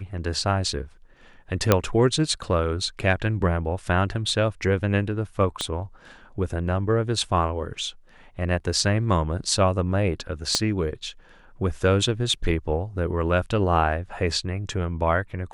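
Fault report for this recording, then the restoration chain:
0:01.72: click −2 dBFS
0:05.61: click −12 dBFS
0:10.55: click −7 dBFS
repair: click removal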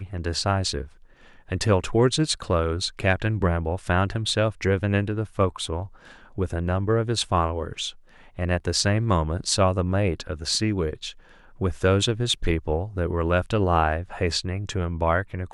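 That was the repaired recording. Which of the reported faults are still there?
0:05.61: click
0:10.55: click

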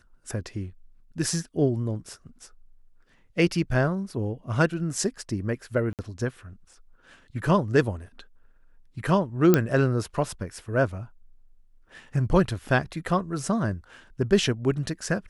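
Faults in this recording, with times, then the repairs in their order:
0:05.93–0:05.99: drop-out 58 ms
0:09.54: click −5 dBFS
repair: click removal
repair the gap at 0:05.93, 58 ms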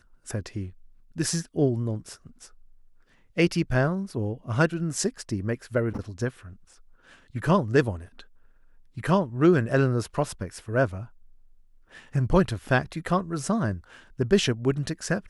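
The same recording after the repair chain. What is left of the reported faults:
none of them is left

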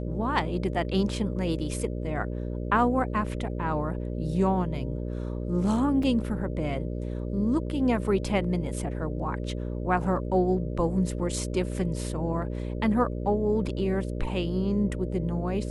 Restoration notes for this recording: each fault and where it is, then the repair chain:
mains buzz 60 Hz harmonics 10 −32 dBFS
0:06.03: drop-out 3.5 ms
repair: hum removal 60 Hz, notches 10
repair the gap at 0:06.03, 3.5 ms

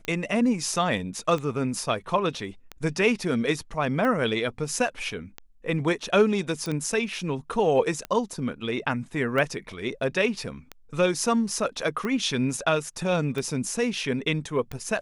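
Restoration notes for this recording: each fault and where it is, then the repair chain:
scratch tick 45 rpm −18 dBFS
0:06.66: click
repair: click removal

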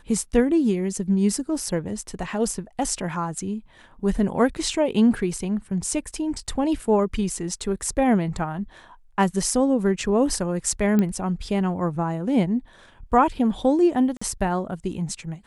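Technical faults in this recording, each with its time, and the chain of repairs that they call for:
0:10.99: click −11 dBFS
0:14.17–0:14.21: drop-out 45 ms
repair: click removal
repair the gap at 0:14.17, 45 ms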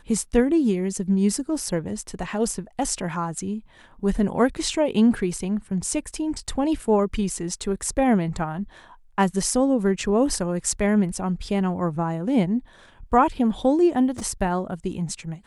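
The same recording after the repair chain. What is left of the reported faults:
none of them is left

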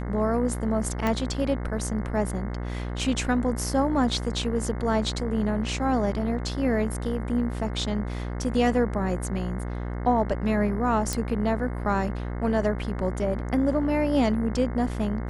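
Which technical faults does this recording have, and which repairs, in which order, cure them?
mains buzz 60 Hz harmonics 36 −31 dBFS
0:01.07: click −13 dBFS
0:11.13: click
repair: click removal
hum removal 60 Hz, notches 36

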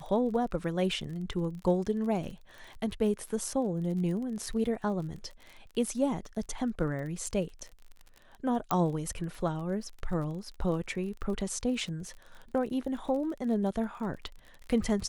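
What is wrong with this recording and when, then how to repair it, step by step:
surface crackle 32 per second −39 dBFS
0:08.71: click −13 dBFS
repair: click removal

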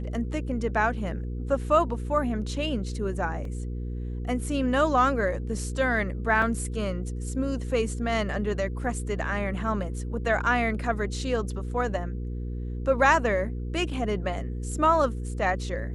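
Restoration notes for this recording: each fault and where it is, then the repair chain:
mains hum 60 Hz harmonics 8 −32 dBFS
0:03.45: drop-out 2.5 ms
0:06.42: drop-out 3.4 ms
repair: hum removal 60 Hz, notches 8
repair the gap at 0:03.45, 2.5 ms
repair the gap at 0:06.42, 3.4 ms

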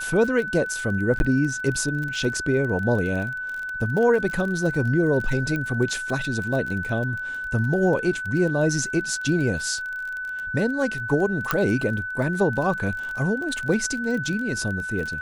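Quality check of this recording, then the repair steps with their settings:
surface crackle 25 per second −29 dBFS
whistle 1,500 Hz −28 dBFS
0:01.19–0:01.20: drop-out 11 ms
0:05.56: click −16 dBFS
0:11.51: click −7 dBFS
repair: click removal
notch filter 1,500 Hz, Q 30
repair the gap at 0:01.19, 11 ms

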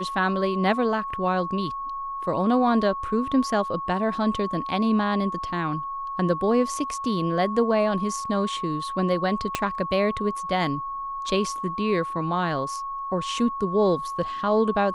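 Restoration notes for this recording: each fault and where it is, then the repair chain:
whistle 1,100 Hz −29 dBFS
0:09.55: click −8 dBFS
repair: click removal
notch filter 1,100 Hz, Q 30

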